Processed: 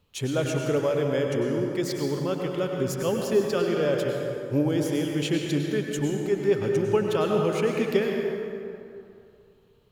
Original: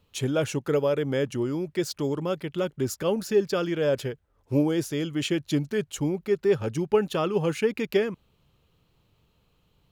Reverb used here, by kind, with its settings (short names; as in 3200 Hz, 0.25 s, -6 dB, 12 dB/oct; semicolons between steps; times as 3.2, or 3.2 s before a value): plate-style reverb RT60 2.6 s, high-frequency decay 0.55×, pre-delay 85 ms, DRR 1 dB; gain -1.5 dB